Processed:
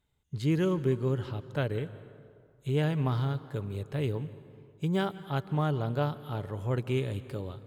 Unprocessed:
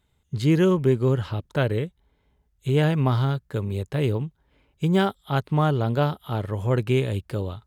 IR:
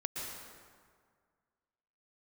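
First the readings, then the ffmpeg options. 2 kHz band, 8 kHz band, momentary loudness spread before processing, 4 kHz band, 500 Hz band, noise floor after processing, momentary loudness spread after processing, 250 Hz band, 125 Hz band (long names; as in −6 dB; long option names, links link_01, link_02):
−8.0 dB, can't be measured, 9 LU, −8.0 dB, −8.0 dB, −62 dBFS, 10 LU, −7.5 dB, −7.0 dB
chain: -filter_complex "[0:a]asplit=2[link_01][link_02];[1:a]atrim=start_sample=2205,asetrate=38367,aresample=44100,adelay=7[link_03];[link_02][link_03]afir=irnorm=-1:irlink=0,volume=-16dB[link_04];[link_01][link_04]amix=inputs=2:normalize=0,volume=-8dB"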